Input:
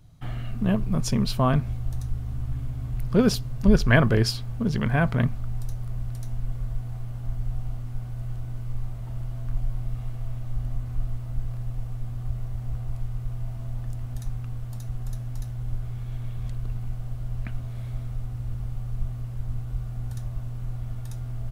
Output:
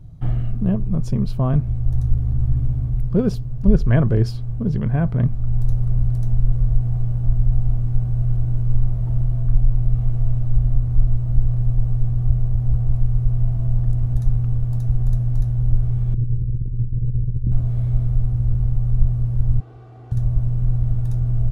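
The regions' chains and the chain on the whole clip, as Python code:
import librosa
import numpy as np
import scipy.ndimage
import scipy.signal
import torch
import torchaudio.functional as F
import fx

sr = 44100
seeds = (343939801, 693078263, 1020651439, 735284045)

y = fx.chain(x, sr, fx.cheby1_lowpass(hz=520.0, order=6),
    fx.over_compress(threshold_db=-32.0, ratio=-0.5), at=(16.14, 17.52))
y = fx.chain(y, sr, fx.bandpass_edges(low_hz=380.0, high_hz=4500.0),
    fx.comb(ms=2.6, depth=0.59), at=(19.6, 20.12))
y = fx.tilt_shelf(y, sr, db=9.5, hz=760.0)
y = fx.rider(y, sr, range_db=4, speed_s=0.5)
y = fx.peak_eq(y, sr, hz=240.0, db=-5.0, octaves=0.39)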